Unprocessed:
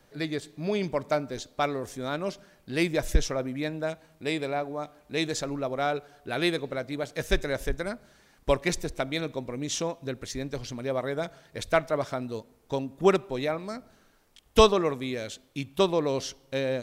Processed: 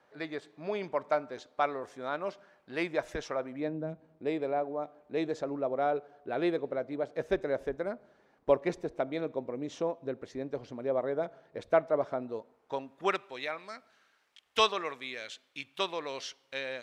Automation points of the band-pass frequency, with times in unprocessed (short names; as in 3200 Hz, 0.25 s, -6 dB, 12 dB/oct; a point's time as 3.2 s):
band-pass, Q 0.84
3.49 s 990 Hz
3.88 s 180 Hz
4.33 s 530 Hz
12.17 s 530 Hz
13.25 s 2200 Hz